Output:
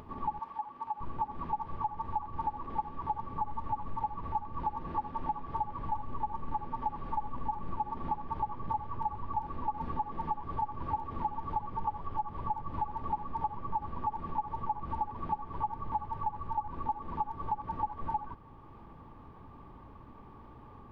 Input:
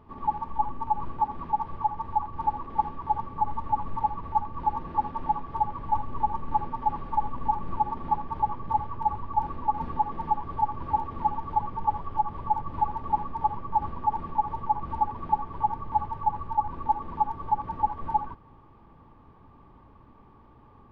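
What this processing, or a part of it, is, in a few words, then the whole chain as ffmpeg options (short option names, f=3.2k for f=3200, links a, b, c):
upward and downward compression: -filter_complex "[0:a]acompressor=mode=upward:threshold=-45dB:ratio=2.5,acompressor=threshold=-30dB:ratio=6,asettb=1/sr,asplit=3[a][b][c];[a]atrim=end=0.394[d];[b]atrim=start=0.39:end=1.01,asetpts=PTS-STARTPTS,afade=t=in:d=0.004:c=qsin,afade=t=out:st=0.616:d=0.004:c=qsin,highpass=f=750:p=1[e];[c]atrim=start=1.006[f];[d][e]acrossfade=d=0.004:c1=hsin:c2=qsin[g];[g][f]acrossfade=d=0.004:c1=qsin:c2=hsin"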